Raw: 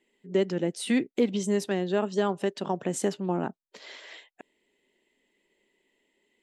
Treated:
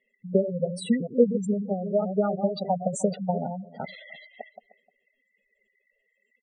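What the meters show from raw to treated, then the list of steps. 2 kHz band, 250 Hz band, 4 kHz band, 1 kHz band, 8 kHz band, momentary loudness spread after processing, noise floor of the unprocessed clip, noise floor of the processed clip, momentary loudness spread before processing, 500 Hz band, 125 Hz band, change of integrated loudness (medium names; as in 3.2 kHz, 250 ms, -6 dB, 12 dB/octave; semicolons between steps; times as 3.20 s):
-6.5 dB, +1.5 dB, -4.5 dB, +2.5 dB, -2.5 dB, 21 LU, -85 dBFS, -75 dBFS, 18 LU, +2.5 dB, +3.5 dB, +2.0 dB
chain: chunks repeated in reverse 214 ms, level -6.5 dB; comb 1.5 ms, depth 91%; transient shaper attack +12 dB, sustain +8 dB; on a send: delay 306 ms -19 dB; on the sum: spectral gate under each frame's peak -10 dB strong; trim -3.5 dB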